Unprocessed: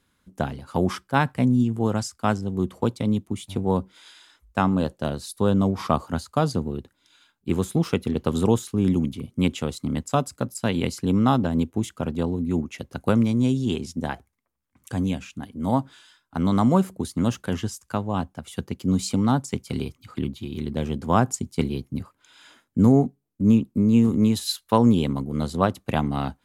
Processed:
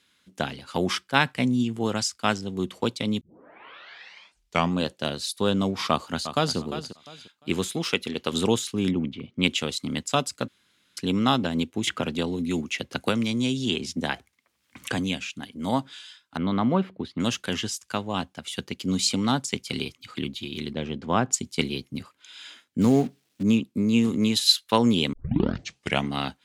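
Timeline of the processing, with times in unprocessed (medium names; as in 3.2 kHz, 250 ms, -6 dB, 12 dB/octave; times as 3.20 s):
3.21 s: tape start 1.60 s
5.90–6.57 s: echo throw 350 ms, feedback 25%, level -11 dB
7.68–8.32 s: bass shelf 260 Hz -7.5 dB
8.90–9.42 s: low-pass 1.6 kHz -> 3.3 kHz
10.48–10.97 s: room tone
11.87–14.99 s: three bands compressed up and down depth 70%
16.37–17.20 s: distance through air 390 m
20.73–21.33 s: tape spacing loss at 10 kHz 21 dB
22.81–23.43 s: companding laws mixed up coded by mu
25.13 s: tape start 0.94 s
whole clip: frequency weighting D; trim -1.5 dB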